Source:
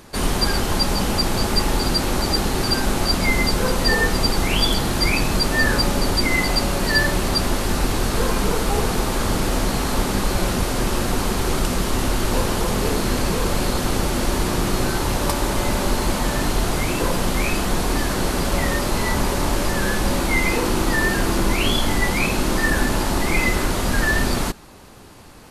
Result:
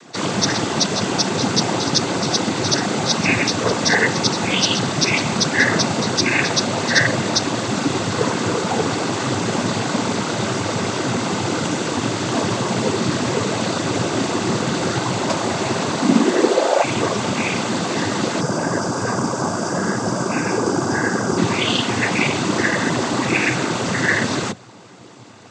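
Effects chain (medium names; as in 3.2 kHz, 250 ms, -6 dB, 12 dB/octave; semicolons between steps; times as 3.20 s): 16.00–16.82 s: resonant high-pass 210 Hz -> 690 Hz, resonance Q 7.7; noise-vocoded speech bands 16; 18.41–21.38 s: time-frequency box 1.7–4.6 kHz -12 dB; trim +3 dB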